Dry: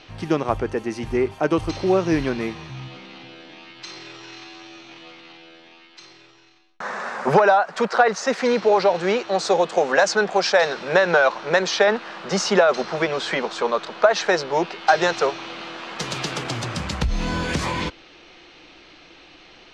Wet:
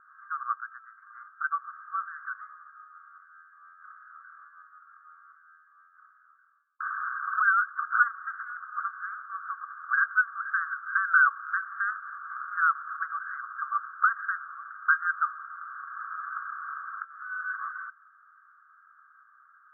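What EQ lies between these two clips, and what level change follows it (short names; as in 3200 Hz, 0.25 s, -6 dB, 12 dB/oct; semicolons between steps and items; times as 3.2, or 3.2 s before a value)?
brick-wall FIR high-pass 1100 Hz; Chebyshev low-pass 1600 Hz, order 8; air absorption 430 m; +4.5 dB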